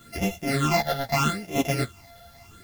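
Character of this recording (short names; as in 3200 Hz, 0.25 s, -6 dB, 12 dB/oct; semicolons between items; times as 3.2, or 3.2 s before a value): a buzz of ramps at a fixed pitch in blocks of 64 samples; phasing stages 8, 0.79 Hz, lowest notch 320–1400 Hz; a quantiser's noise floor 10-bit, dither triangular; a shimmering, thickened sound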